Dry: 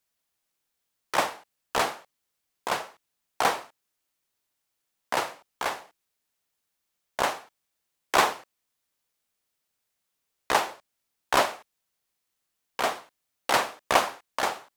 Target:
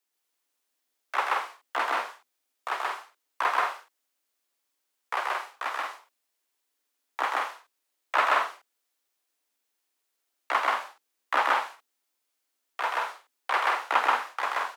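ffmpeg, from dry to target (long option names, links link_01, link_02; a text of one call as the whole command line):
ffmpeg -i in.wav -filter_complex "[0:a]acrossover=split=2800[link_01][link_02];[link_02]acompressor=threshold=-46dB:ratio=4:attack=1:release=60[link_03];[link_01][link_03]amix=inputs=2:normalize=0,aecho=1:1:131.2|177.8:0.891|0.562,afreqshift=240,volume=-2.5dB" out.wav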